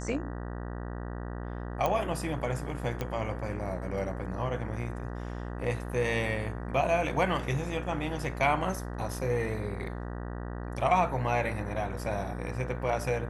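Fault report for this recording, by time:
buzz 60 Hz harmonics 32 -37 dBFS
1.86 s: pop -15 dBFS
3.01 s: pop -18 dBFS

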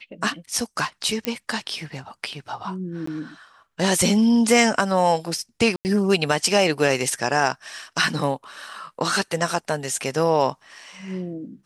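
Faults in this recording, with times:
1.25 s: pop -8 dBFS
3.06–3.07 s: dropout 14 ms
5.76–5.85 s: dropout 89 ms

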